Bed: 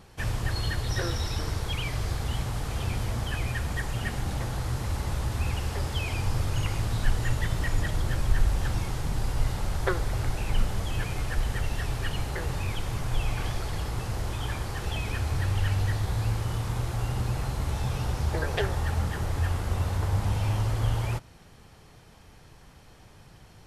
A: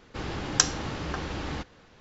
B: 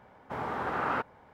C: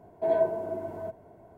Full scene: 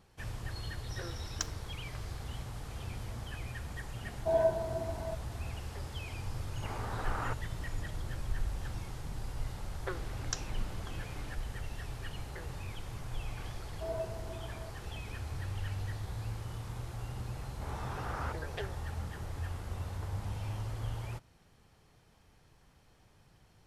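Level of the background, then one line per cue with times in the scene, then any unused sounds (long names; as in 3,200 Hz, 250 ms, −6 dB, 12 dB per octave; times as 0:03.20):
bed −11.5 dB
0:00.81: mix in A −14.5 dB + dead-zone distortion −30.5 dBFS
0:04.04: mix in C −4.5 dB + comb filter 1.2 ms, depth 48%
0:06.32: mix in B −8 dB
0:09.73: mix in A −16 dB + buffer that repeats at 0:01.29
0:13.59: mix in C −13.5 dB
0:17.31: mix in B −10 dB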